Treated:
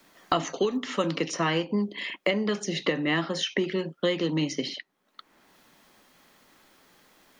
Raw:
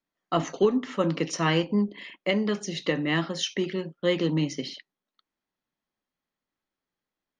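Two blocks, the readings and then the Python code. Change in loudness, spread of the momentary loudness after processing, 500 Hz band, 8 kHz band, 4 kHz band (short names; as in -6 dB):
-1.0 dB, 4 LU, -1.0 dB, 0.0 dB, +1.0 dB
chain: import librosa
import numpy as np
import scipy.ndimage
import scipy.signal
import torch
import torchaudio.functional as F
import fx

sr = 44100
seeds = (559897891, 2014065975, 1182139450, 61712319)

y = fx.low_shelf(x, sr, hz=150.0, db=-8.5)
y = fx.band_squash(y, sr, depth_pct=100)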